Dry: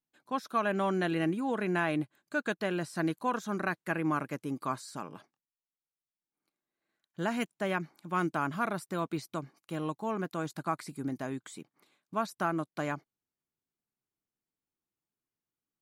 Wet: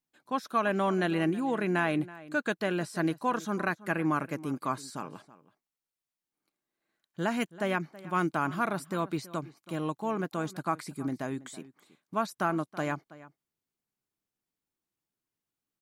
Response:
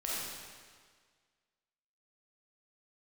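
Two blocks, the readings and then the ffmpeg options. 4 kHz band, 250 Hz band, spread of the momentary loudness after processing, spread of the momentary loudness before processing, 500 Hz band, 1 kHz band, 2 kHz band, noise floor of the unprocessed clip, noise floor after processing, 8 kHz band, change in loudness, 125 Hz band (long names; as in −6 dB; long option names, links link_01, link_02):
+2.0 dB, +2.0 dB, 11 LU, 9 LU, +2.0 dB, +2.0 dB, +2.0 dB, below −85 dBFS, below −85 dBFS, +2.0 dB, +2.0 dB, +2.0 dB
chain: -filter_complex "[0:a]asplit=2[link_01][link_02];[link_02]adelay=326.5,volume=-18dB,highshelf=frequency=4000:gain=-7.35[link_03];[link_01][link_03]amix=inputs=2:normalize=0,volume=2dB"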